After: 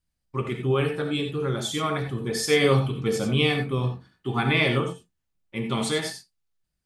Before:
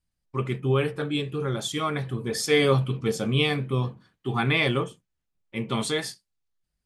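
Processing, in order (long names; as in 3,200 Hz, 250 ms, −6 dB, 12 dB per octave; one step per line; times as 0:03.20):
reverb whose tail is shaped and stops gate 110 ms rising, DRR 5.5 dB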